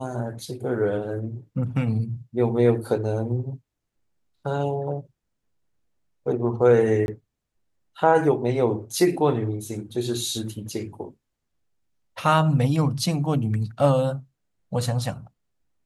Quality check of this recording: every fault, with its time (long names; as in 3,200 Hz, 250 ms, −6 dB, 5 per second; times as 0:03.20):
0:07.06–0:07.08: drop-out 21 ms